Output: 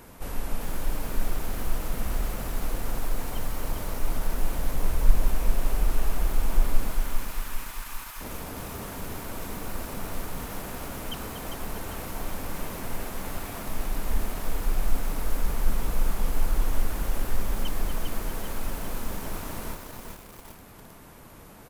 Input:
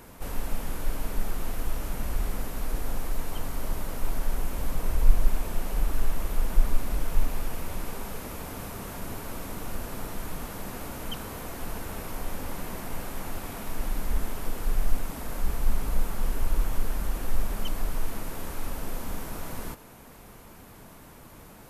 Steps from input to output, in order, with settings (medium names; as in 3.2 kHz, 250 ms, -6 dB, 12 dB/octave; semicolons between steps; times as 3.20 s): 6.91–8.21 s: steep high-pass 930 Hz 36 dB/octave; speakerphone echo 240 ms, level -8 dB; bit-crushed delay 399 ms, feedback 55%, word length 7-bit, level -5 dB